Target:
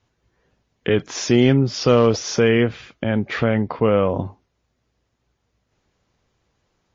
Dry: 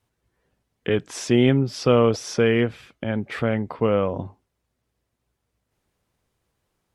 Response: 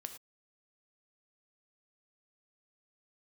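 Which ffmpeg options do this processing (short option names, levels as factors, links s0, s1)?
-filter_complex "[0:a]asplit=2[s0][s1];[s1]alimiter=limit=0.15:level=0:latency=1:release=33,volume=1.06[s2];[s0][s2]amix=inputs=2:normalize=0,asoftclip=type=hard:threshold=0.531" -ar 16000 -c:a libmp3lame -b:a 32k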